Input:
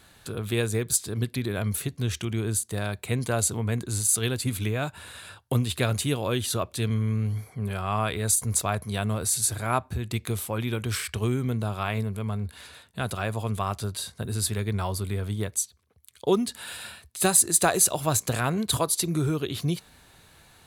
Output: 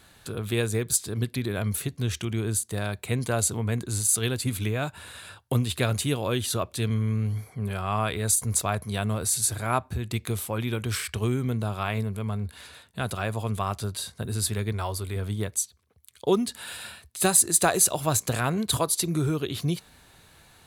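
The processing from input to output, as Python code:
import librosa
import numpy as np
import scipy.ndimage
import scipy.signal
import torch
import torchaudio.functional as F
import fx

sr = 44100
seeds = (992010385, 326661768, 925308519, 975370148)

y = fx.peak_eq(x, sr, hz=170.0, db=-10.0, octaves=0.85, at=(14.72, 15.16))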